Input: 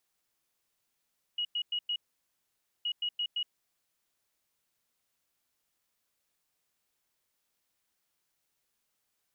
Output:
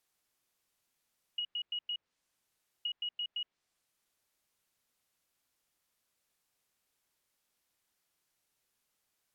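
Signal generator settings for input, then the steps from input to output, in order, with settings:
beeps in groups sine 2,900 Hz, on 0.07 s, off 0.10 s, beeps 4, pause 0.89 s, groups 2, −29 dBFS
treble cut that deepens with the level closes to 2,600 Hz, closed at −34 dBFS

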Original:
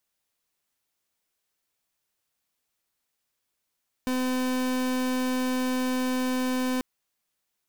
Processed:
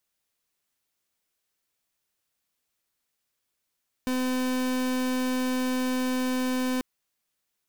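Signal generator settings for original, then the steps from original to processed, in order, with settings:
pulse wave 255 Hz, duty 38% −26.5 dBFS 2.74 s
parametric band 830 Hz −2 dB

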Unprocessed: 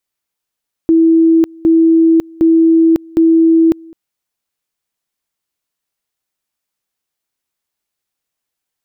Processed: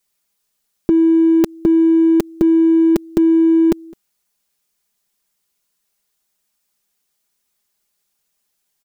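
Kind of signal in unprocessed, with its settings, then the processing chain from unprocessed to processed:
tone at two levels in turn 327 Hz −5.5 dBFS, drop 27 dB, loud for 0.55 s, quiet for 0.21 s, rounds 4
bass and treble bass +2 dB, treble +5 dB
comb filter 4.9 ms, depth 71%
in parallel at −9.5 dB: gain into a clipping stage and back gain 23 dB

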